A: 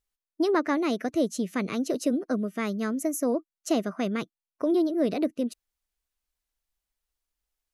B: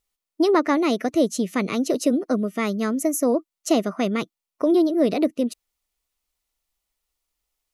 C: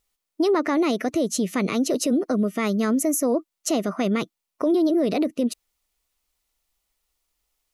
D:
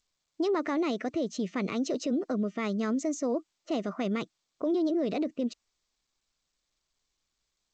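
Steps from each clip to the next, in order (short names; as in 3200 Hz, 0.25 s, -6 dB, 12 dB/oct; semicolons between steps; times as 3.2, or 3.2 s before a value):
low shelf 160 Hz -5 dB; notch 1600 Hz, Q 6.8; gain +6.5 dB
limiter -18.5 dBFS, peak gain reduction 10 dB; gain +4 dB
low-pass opened by the level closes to 440 Hz, open at -17.5 dBFS; gain -7.5 dB; G.722 64 kbps 16000 Hz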